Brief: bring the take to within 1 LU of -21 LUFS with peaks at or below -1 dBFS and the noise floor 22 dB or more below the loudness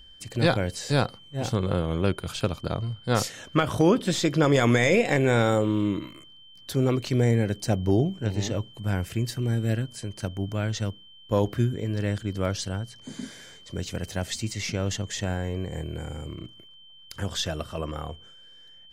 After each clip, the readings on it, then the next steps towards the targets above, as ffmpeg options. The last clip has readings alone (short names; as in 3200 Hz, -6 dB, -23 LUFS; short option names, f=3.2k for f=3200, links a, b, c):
steady tone 3100 Hz; tone level -49 dBFS; loudness -26.5 LUFS; peak -9.0 dBFS; loudness target -21.0 LUFS
-> -af "bandreject=f=3.1k:w=30"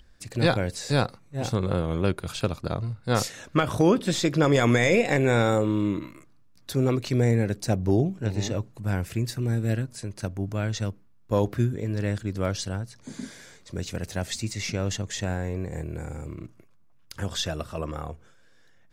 steady tone none; loudness -26.5 LUFS; peak -9.0 dBFS; loudness target -21.0 LUFS
-> -af "volume=5.5dB"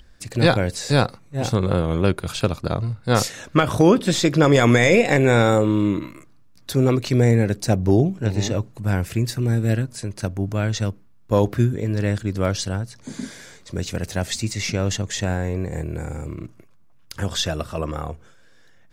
loudness -21.0 LUFS; peak -3.5 dBFS; noise floor -49 dBFS